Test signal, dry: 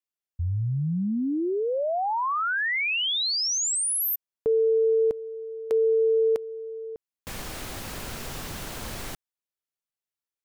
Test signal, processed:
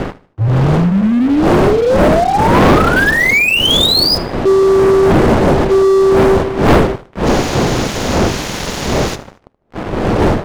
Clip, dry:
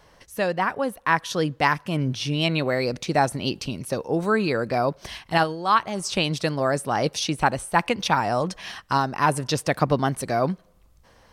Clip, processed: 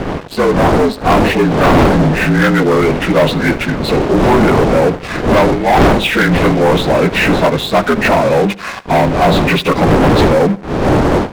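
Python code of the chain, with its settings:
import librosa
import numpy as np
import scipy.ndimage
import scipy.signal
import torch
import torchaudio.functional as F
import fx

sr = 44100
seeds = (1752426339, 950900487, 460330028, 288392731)

p1 = fx.partial_stretch(x, sr, pct=75)
p2 = fx.dmg_wind(p1, sr, seeds[0], corner_hz=510.0, level_db=-26.0)
p3 = fx.leveller(p2, sr, passes=5)
p4 = p3 + fx.echo_feedback(p3, sr, ms=76, feedback_pct=36, wet_db=-19.0, dry=0)
y = p4 * 10.0 ** (-2.5 / 20.0)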